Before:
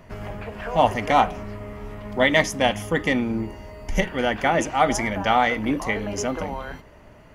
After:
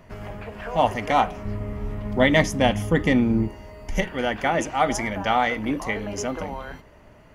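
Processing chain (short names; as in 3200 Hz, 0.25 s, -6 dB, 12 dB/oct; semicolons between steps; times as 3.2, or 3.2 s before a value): 1.45–3.48 low shelf 330 Hz +10 dB; gain -2 dB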